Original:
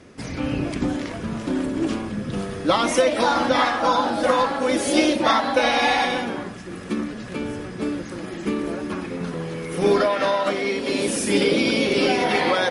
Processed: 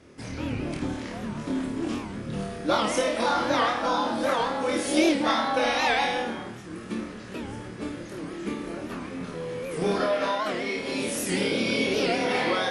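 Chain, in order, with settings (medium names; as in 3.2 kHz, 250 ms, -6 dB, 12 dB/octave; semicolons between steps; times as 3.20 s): flutter echo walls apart 4.5 m, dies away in 0.44 s; warped record 78 rpm, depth 160 cents; trim -7 dB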